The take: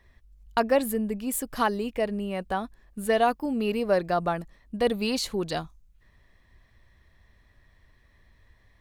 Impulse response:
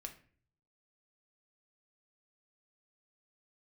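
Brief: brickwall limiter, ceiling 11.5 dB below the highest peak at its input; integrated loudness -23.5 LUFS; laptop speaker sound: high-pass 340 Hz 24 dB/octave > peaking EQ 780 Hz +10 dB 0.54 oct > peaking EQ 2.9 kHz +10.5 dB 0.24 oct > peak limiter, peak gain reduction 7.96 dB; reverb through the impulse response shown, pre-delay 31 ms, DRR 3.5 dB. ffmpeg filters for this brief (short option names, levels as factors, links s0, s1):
-filter_complex "[0:a]alimiter=limit=0.0841:level=0:latency=1,asplit=2[s0][s1];[1:a]atrim=start_sample=2205,adelay=31[s2];[s1][s2]afir=irnorm=-1:irlink=0,volume=1.06[s3];[s0][s3]amix=inputs=2:normalize=0,highpass=f=340:w=0.5412,highpass=f=340:w=1.3066,equalizer=f=780:t=o:w=0.54:g=10,equalizer=f=2900:t=o:w=0.24:g=10.5,volume=2.37,alimiter=limit=0.237:level=0:latency=1"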